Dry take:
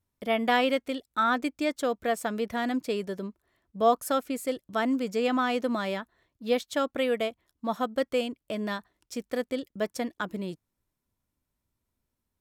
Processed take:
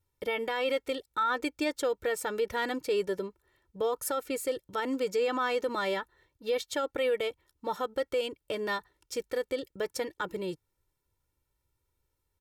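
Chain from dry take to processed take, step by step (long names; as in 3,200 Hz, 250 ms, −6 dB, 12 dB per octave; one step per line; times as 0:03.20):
comb filter 2.2 ms, depth 77%
brickwall limiter −21.5 dBFS, peak gain reduction 11.5 dB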